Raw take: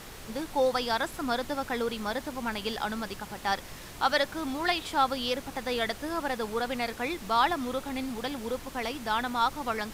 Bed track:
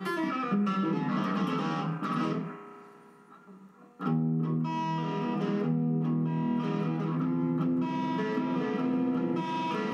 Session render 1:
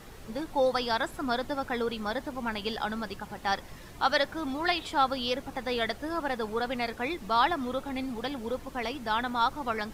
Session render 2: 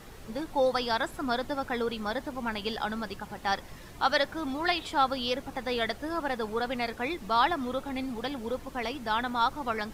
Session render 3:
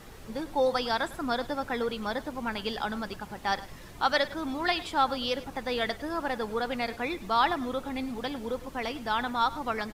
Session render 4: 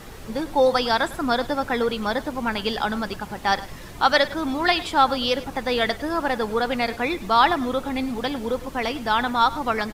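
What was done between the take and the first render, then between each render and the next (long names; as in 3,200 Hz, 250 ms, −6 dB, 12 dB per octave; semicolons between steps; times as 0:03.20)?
broadband denoise 8 dB, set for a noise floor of −45 dBFS
no processing that can be heard
single-tap delay 104 ms −17.5 dB
level +7.5 dB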